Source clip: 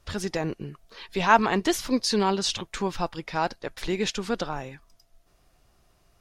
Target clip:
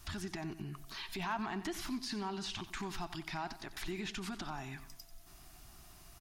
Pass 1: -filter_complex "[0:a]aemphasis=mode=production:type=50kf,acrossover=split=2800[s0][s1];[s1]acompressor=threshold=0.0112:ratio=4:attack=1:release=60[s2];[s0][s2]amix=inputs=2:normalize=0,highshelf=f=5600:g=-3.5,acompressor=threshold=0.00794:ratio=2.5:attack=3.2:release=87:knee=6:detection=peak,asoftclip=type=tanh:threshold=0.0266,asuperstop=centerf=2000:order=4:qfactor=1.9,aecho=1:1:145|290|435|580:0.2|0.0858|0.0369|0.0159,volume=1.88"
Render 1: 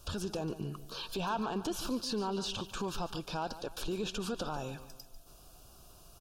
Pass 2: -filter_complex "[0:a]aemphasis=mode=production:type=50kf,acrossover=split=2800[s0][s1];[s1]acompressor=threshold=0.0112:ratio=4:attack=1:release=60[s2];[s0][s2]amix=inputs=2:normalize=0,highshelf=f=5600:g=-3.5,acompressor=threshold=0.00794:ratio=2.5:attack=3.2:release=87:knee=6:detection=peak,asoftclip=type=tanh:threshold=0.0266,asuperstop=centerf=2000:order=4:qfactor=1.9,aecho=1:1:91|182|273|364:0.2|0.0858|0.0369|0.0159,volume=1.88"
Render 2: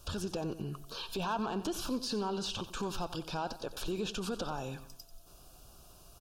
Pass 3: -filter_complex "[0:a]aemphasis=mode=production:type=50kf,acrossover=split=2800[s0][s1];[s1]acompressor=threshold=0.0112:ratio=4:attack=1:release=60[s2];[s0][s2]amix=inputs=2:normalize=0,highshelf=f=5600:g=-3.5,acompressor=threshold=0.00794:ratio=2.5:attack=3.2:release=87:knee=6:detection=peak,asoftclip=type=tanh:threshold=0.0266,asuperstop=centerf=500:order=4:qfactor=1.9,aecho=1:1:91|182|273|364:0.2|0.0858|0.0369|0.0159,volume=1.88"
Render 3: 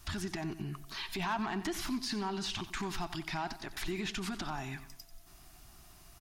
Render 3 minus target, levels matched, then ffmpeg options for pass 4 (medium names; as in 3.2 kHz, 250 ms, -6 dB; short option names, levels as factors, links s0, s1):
compression: peak gain reduction -4.5 dB
-filter_complex "[0:a]aemphasis=mode=production:type=50kf,acrossover=split=2800[s0][s1];[s1]acompressor=threshold=0.0112:ratio=4:attack=1:release=60[s2];[s0][s2]amix=inputs=2:normalize=0,highshelf=f=5600:g=-3.5,acompressor=threshold=0.00335:ratio=2.5:attack=3.2:release=87:knee=6:detection=peak,asoftclip=type=tanh:threshold=0.0266,asuperstop=centerf=500:order=4:qfactor=1.9,aecho=1:1:91|182|273|364:0.2|0.0858|0.0369|0.0159,volume=1.88"